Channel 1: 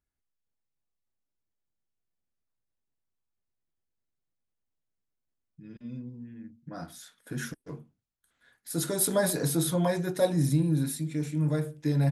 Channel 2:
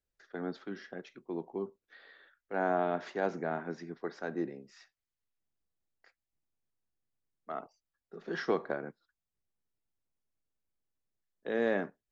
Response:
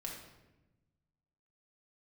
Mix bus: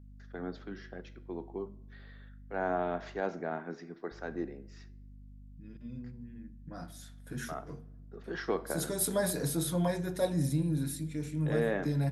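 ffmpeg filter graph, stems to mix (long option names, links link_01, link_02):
-filter_complex "[0:a]aeval=exprs='val(0)+0.00501*(sin(2*PI*50*n/s)+sin(2*PI*2*50*n/s)/2+sin(2*PI*3*50*n/s)/3+sin(2*PI*4*50*n/s)/4+sin(2*PI*5*50*n/s)/5)':channel_layout=same,volume=-6dB,asplit=3[link_01][link_02][link_03];[link_01]atrim=end=3.2,asetpts=PTS-STARTPTS,afade=type=out:start_time=3.196:duration=0.004:curve=hsin[link_04];[link_02]atrim=start=3.2:end=4.11,asetpts=PTS-STARTPTS,volume=0[link_05];[link_03]atrim=start=4.11,asetpts=PTS-STARTPTS,afade=type=in:duration=0.004:curve=hsin[link_06];[link_04][link_05][link_06]concat=n=3:v=0:a=1,asplit=2[link_07][link_08];[link_08]volume=-11.5dB[link_09];[1:a]flanger=delay=8.8:depth=4.5:regen=-88:speed=0.38:shape=sinusoidal,volume=2dB,asplit=2[link_10][link_11];[link_11]volume=-17dB[link_12];[2:a]atrim=start_sample=2205[link_13];[link_09][link_12]amix=inputs=2:normalize=0[link_14];[link_14][link_13]afir=irnorm=-1:irlink=0[link_15];[link_07][link_10][link_15]amix=inputs=3:normalize=0"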